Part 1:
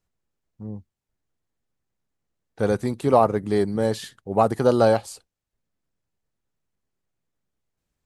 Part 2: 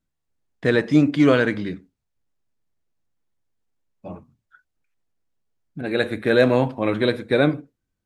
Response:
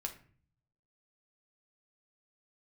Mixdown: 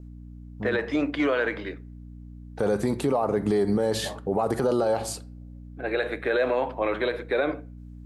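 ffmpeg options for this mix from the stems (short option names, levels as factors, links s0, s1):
-filter_complex "[0:a]highpass=110,alimiter=limit=0.237:level=0:latency=1,volume=1.19,asplit=2[s0][s1];[s1]volume=0.596[s2];[1:a]acrossover=split=360 3100:gain=0.0708 1 0.2[s3][s4][s5];[s3][s4][s5]amix=inputs=3:normalize=0,aeval=exprs='val(0)+0.01*(sin(2*PI*60*n/s)+sin(2*PI*2*60*n/s)/2+sin(2*PI*3*60*n/s)/3+sin(2*PI*4*60*n/s)/4+sin(2*PI*5*60*n/s)/5)':c=same,adynamicequalizer=threshold=0.0158:dfrequency=2400:dqfactor=0.7:tfrequency=2400:tqfactor=0.7:attack=5:release=100:ratio=0.375:range=2.5:mode=boostabove:tftype=highshelf,volume=0.794,asplit=2[s6][s7];[s7]volume=0.168[s8];[2:a]atrim=start_sample=2205[s9];[s2][s8]amix=inputs=2:normalize=0[s10];[s10][s9]afir=irnorm=-1:irlink=0[s11];[s0][s6][s11]amix=inputs=3:normalize=0,equalizer=f=660:w=0.54:g=4,alimiter=limit=0.168:level=0:latency=1:release=51"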